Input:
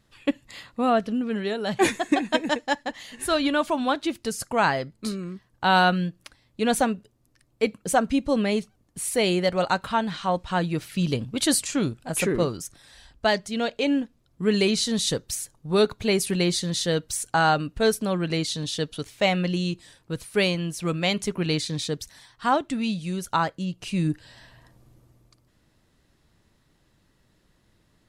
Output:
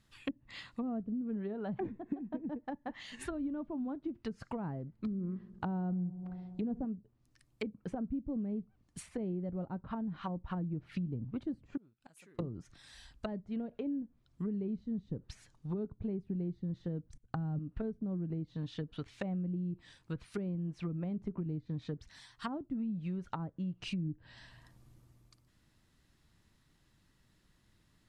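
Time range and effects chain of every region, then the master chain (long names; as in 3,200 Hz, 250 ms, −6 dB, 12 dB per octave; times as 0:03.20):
0:04.99–0:06.85: tilt shelving filter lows +5.5 dB, about 1,300 Hz + feedback echo with a low-pass in the loop 66 ms, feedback 83%, low-pass 1,400 Hz, level −21 dB
0:11.77–0:12.39: low-shelf EQ 140 Hz −9 dB + gate with flip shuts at −32 dBFS, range −28 dB
0:17.08–0:17.59: bass and treble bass +12 dB, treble +7 dB + output level in coarse steps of 22 dB
whole clip: treble cut that deepens with the level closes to 350 Hz, closed at −22 dBFS; parametric band 520 Hz −7 dB 1.3 octaves; downward compressor, threshold −29 dBFS; level −4.5 dB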